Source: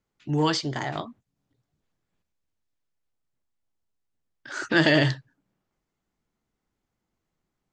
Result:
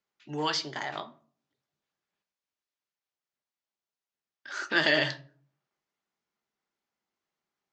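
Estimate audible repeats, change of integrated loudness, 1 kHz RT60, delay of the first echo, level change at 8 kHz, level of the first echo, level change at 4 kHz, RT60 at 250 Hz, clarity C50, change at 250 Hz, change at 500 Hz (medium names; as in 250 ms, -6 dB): no echo, -4.5 dB, 0.45 s, no echo, -4.0 dB, no echo, -1.5 dB, 0.60 s, 17.5 dB, -11.0 dB, -6.0 dB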